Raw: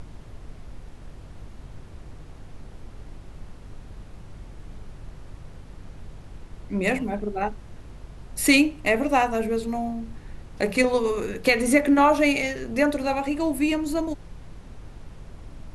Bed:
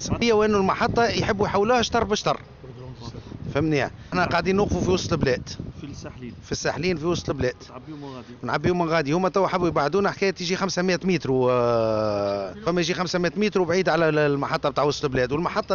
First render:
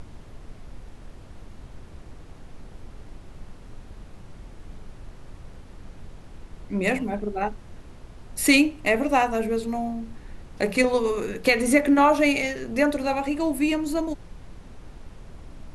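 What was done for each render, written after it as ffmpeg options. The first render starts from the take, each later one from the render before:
ffmpeg -i in.wav -af "bandreject=frequency=50:width_type=h:width=4,bandreject=frequency=100:width_type=h:width=4,bandreject=frequency=150:width_type=h:width=4" out.wav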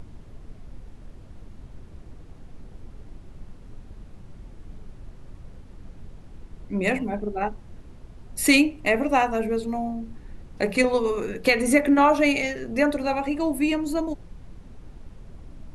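ffmpeg -i in.wav -af "afftdn=noise_reduction=6:noise_floor=-45" out.wav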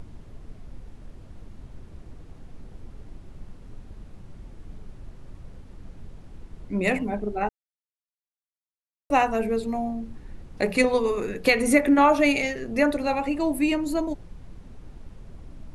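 ffmpeg -i in.wav -filter_complex "[0:a]asplit=3[link_01][link_02][link_03];[link_01]atrim=end=7.49,asetpts=PTS-STARTPTS,afade=type=out:start_time=7.486:duration=0.004:curve=hsin[link_04];[link_02]atrim=start=7.49:end=9.1,asetpts=PTS-STARTPTS,volume=0[link_05];[link_03]atrim=start=9.1,asetpts=PTS-STARTPTS,afade=type=in:duration=0.004:curve=hsin[link_06];[link_04][link_05][link_06]concat=n=3:v=0:a=1" out.wav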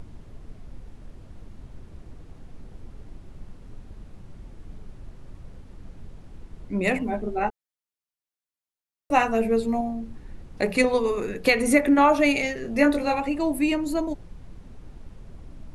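ffmpeg -i in.wav -filter_complex "[0:a]asettb=1/sr,asplit=3[link_01][link_02][link_03];[link_01]atrim=end=7.054[link_04];[link_02]atrim=start=7.05:end=9.81,asetpts=PTS-STARTPTS,afade=type=in:duration=0.004:curve=qsin,afade=type=out:start_time=2.756:duration=0.004:curve=qsin,asplit=2[link_05][link_06];[link_06]adelay=13,volume=-5dB[link_07];[link_05][link_07]amix=inputs=2:normalize=0,atrim=end_sample=121716[link_08];[link_03]atrim=start=9.806[link_09];[link_04][link_08]acrossfade=duration=0.004:curve1=hsin:curve2=qsin[link_10];[link_10][link_09]acrossfade=duration=0.004:curve1=qsin:curve2=hsin,asettb=1/sr,asplit=3[link_11][link_12][link_13];[link_11]atrim=end=12.624[link_14];[link_12]atrim=start=12.62:end=13.2,asetpts=PTS-STARTPTS,afade=type=in:duration=0.004:curve=qsin,afade=type=out:start_time=0.576:duration=0.004:curve=qsin,asplit=2[link_15][link_16];[link_16]adelay=21,volume=-3.5dB[link_17];[link_15][link_17]amix=inputs=2:normalize=0,atrim=end_sample=25578[link_18];[link_13]atrim=start=13.196[link_19];[link_14][link_18]acrossfade=duration=0.004:curve1=hsin:curve2=qsin[link_20];[link_20][link_19]acrossfade=duration=0.004:curve1=qsin:curve2=hsin" out.wav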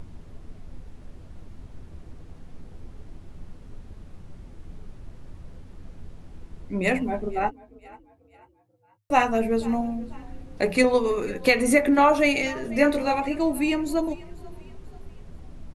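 ffmpeg -i in.wav -filter_complex "[0:a]asplit=2[link_01][link_02];[link_02]adelay=12,volume=-11dB[link_03];[link_01][link_03]amix=inputs=2:normalize=0,asplit=4[link_04][link_05][link_06][link_07];[link_05]adelay=489,afreqshift=34,volume=-22dB[link_08];[link_06]adelay=978,afreqshift=68,volume=-29.5dB[link_09];[link_07]adelay=1467,afreqshift=102,volume=-37.1dB[link_10];[link_04][link_08][link_09][link_10]amix=inputs=4:normalize=0" out.wav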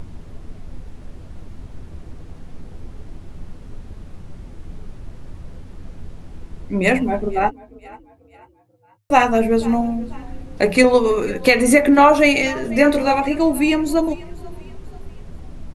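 ffmpeg -i in.wav -af "volume=7dB,alimiter=limit=-1dB:level=0:latency=1" out.wav

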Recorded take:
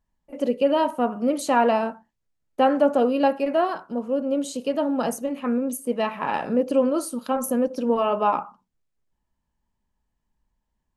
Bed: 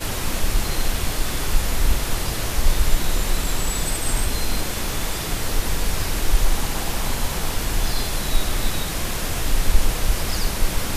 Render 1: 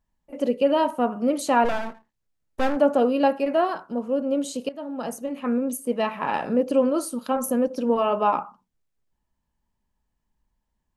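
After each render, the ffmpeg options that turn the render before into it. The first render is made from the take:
ffmpeg -i in.wav -filter_complex "[0:a]asplit=3[link_01][link_02][link_03];[link_01]afade=type=out:start_time=1.64:duration=0.02[link_04];[link_02]aeval=exprs='max(val(0),0)':channel_layout=same,afade=type=in:start_time=1.64:duration=0.02,afade=type=out:start_time=2.75:duration=0.02[link_05];[link_03]afade=type=in:start_time=2.75:duration=0.02[link_06];[link_04][link_05][link_06]amix=inputs=3:normalize=0,asplit=2[link_07][link_08];[link_07]atrim=end=4.69,asetpts=PTS-STARTPTS,afade=type=out:start_time=4.686:duration=0.004:curve=hsin:silence=0.158489[link_09];[link_08]atrim=start=4.69,asetpts=PTS-STARTPTS,afade=type=in:duration=0.85:silence=0.158489[link_10];[link_09][link_10]concat=n=2:v=0:a=1" out.wav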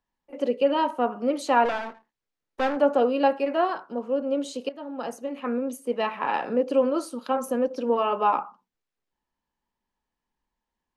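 ffmpeg -i in.wav -filter_complex "[0:a]acrossover=split=260 6000:gain=0.224 1 0.251[link_01][link_02][link_03];[link_01][link_02][link_03]amix=inputs=3:normalize=0,bandreject=frequency=630:width=12" out.wav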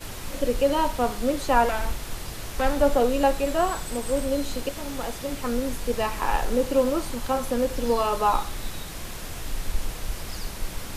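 ffmpeg -i in.wav -i bed.wav -filter_complex "[1:a]volume=-10.5dB[link_01];[0:a][link_01]amix=inputs=2:normalize=0" out.wav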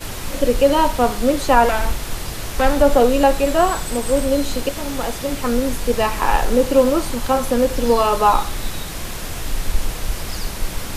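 ffmpeg -i in.wav -af "volume=7.5dB,alimiter=limit=-2dB:level=0:latency=1" out.wav

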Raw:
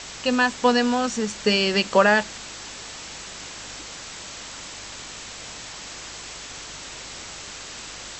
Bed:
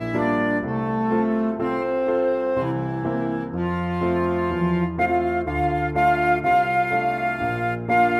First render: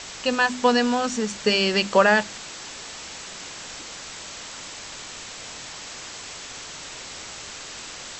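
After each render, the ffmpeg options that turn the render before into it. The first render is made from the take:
ffmpeg -i in.wav -af "bandreject=frequency=50:width_type=h:width=4,bandreject=frequency=100:width_type=h:width=4,bandreject=frequency=150:width_type=h:width=4,bandreject=frequency=200:width_type=h:width=4,bandreject=frequency=250:width_type=h:width=4,bandreject=frequency=300:width_type=h:width=4,bandreject=frequency=350:width_type=h:width=4" out.wav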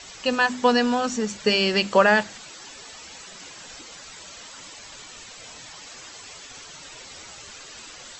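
ffmpeg -i in.wav -af "afftdn=noise_reduction=11:noise_floor=-39" out.wav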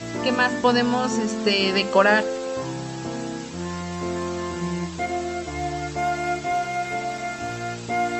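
ffmpeg -i in.wav -i bed.wav -filter_complex "[1:a]volume=-6dB[link_01];[0:a][link_01]amix=inputs=2:normalize=0" out.wav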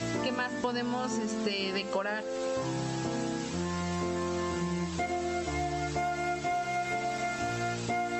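ffmpeg -i in.wav -af "acompressor=threshold=-28dB:ratio=12" out.wav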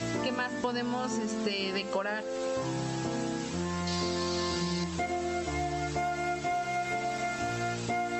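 ffmpeg -i in.wav -filter_complex "[0:a]asettb=1/sr,asplit=3[link_01][link_02][link_03];[link_01]atrim=end=3.874[link_04];[link_02]atrim=start=3.87:end=4.84,asetpts=PTS-STARTPTS,afade=type=in:duration=0.004:curve=qsin,afade=type=out:start_time=0.966:duration=0.004:curve=qsin,equalizer=frequency=4500:width=1.8:gain=14.5[link_05];[link_03]atrim=start=4.836[link_06];[link_04][link_05]acrossfade=duration=0.004:curve1=hsin:curve2=qsin[link_07];[link_07][link_06]acrossfade=duration=0.004:curve1=qsin:curve2=hsin" out.wav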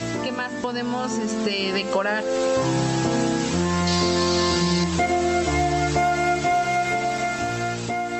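ffmpeg -i in.wav -filter_complex "[0:a]dynaudnorm=framelen=300:gausssize=11:maxgain=8dB,asplit=2[link_01][link_02];[link_02]alimiter=limit=-22.5dB:level=0:latency=1:release=253,volume=-1dB[link_03];[link_01][link_03]amix=inputs=2:normalize=0" out.wav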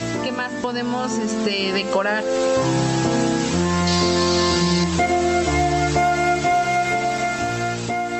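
ffmpeg -i in.wav -af "volume=2.5dB" out.wav

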